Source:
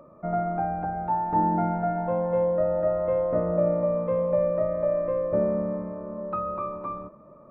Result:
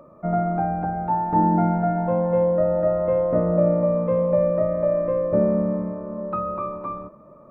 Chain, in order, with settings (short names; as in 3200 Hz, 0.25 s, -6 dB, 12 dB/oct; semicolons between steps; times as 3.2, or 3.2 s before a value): dynamic EQ 200 Hz, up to +5 dB, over -38 dBFS, Q 0.76; gain +2.5 dB